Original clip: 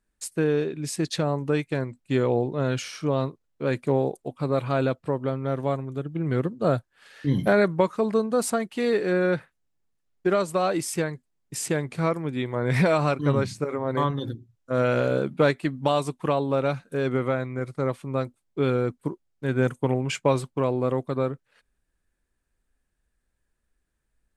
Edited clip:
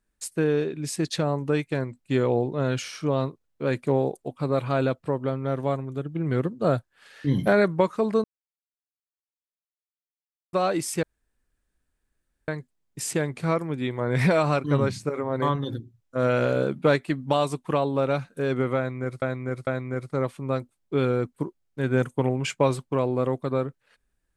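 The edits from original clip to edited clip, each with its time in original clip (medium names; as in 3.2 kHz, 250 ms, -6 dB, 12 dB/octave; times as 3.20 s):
8.24–10.53 s: mute
11.03 s: insert room tone 1.45 s
17.32–17.77 s: loop, 3 plays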